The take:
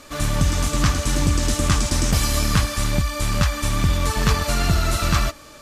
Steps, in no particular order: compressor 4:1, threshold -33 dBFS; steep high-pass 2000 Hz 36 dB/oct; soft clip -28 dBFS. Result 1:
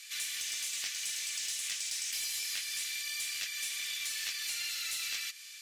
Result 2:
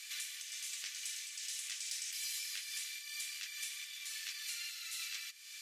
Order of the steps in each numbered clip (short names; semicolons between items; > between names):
steep high-pass > compressor > soft clip; compressor > steep high-pass > soft clip